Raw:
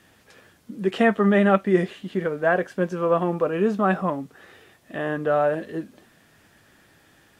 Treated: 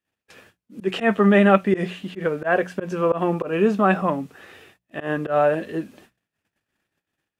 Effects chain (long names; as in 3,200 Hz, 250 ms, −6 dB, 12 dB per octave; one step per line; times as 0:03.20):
noise gate −52 dBFS, range −35 dB
parametric band 2,600 Hz +6 dB 0.28 octaves
mains-hum notches 60/120/180 Hz
volume swells 109 ms
level +3 dB